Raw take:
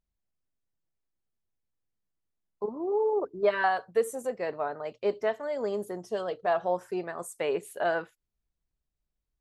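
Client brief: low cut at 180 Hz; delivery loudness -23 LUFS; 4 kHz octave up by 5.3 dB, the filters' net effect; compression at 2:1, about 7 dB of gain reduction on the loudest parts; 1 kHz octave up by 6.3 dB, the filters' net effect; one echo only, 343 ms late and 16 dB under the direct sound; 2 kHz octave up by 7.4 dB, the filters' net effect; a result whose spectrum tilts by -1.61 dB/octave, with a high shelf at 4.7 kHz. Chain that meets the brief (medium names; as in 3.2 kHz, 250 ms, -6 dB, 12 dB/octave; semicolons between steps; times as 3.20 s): high-pass 180 Hz; peaking EQ 1 kHz +8 dB; peaking EQ 2 kHz +6 dB; peaking EQ 4 kHz +6 dB; treble shelf 4.7 kHz -4.5 dB; compression 2:1, threshold -28 dBFS; delay 343 ms -16 dB; trim +8 dB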